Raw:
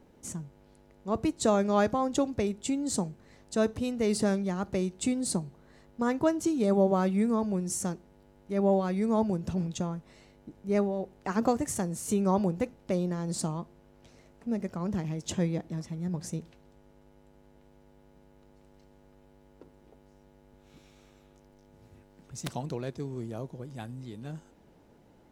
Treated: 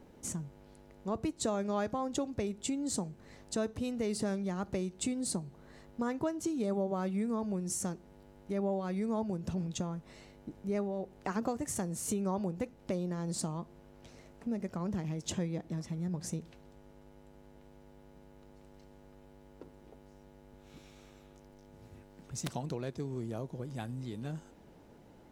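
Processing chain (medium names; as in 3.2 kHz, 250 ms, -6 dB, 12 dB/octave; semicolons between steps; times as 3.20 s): compression 2.5:1, threshold -37 dBFS, peak gain reduction 12.5 dB; trim +2 dB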